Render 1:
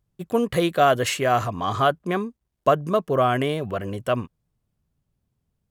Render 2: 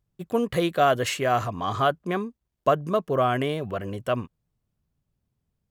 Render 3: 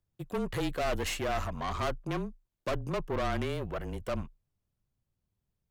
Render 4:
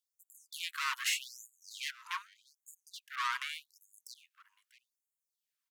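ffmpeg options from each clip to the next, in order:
ffmpeg -i in.wav -af "equalizer=frequency=10000:width_type=o:width=0.77:gain=-2.5,volume=-2.5dB" out.wav
ffmpeg -i in.wav -af "aeval=exprs='(tanh(22.4*val(0)+0.65)-tanh(0.65))/22.4':channel_layout=same,afreqshift=-27,volume=-1.5dB" out.wav
ffmpeg -i in.wav -af "aecho=1:1:642:0.0891,afftfilt=real='re*gte(b*sr/1024,870*pow(6700/870,0.5+0.5*sin(2*PI*0.83*pts/sr)))':imag='im*gte(b*sr/1024,870*pow(6700/870,0.5+0.5*sin(2*PI*0.83*pts/sr)))':win_size=1024:overlap=0.75,volume=3.5dB" out.wav

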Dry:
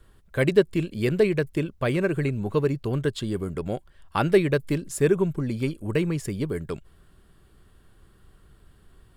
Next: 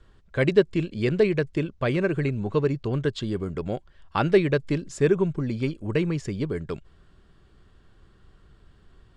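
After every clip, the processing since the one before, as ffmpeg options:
ffmpeg -i in.wav -af "lowpass=frequency=6800:width=0.5412,lowpass=frequency=6800:width=1.3066" out.wav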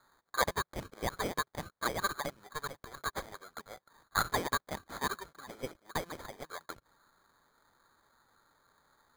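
ffmpeg -i in.wav -af "highpass=frequency=1600:width_type=q:width=1.8,acrusher=samples=16:mix=1:aa=0.000001,volume=-3dB" out.wav

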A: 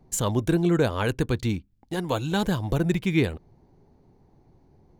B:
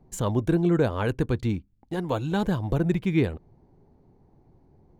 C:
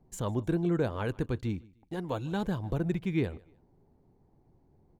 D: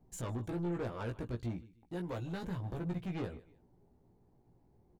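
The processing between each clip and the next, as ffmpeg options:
ffmpeg -i in.wav -af "highshelf=frequency=2400:gain=-10" out.wav
ffmpeg -i in.wav -af "aecho=1:1:152|304:0.0631|0.0183,volume=-6.5dB" out.wav
ffmpeg -i in.wav -filter_complex "[0:a]asoftclip=type=tanh:threshold=-31.5dB,asplit=2[link_01][link_02];[link_02]adelay=17,volume=-4dB[link_03];[link_01][link_03]amix=inputs=2:normalize=0,volume=-4dB" out.wav

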